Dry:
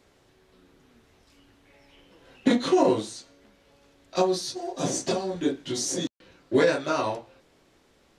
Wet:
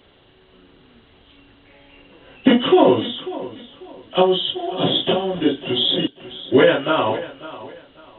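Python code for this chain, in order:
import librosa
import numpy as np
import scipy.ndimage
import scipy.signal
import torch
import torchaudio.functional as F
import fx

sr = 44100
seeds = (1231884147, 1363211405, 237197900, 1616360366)

y = fx.freq_compress(x, sr, knee_hz=2700.0, ratio=4.0)
y = fx.echo_feedback(y, sr, ms=544, feedback_pct=28, wet_db=-16.0)
y = y * librosa.db_to_amplitude(7.5)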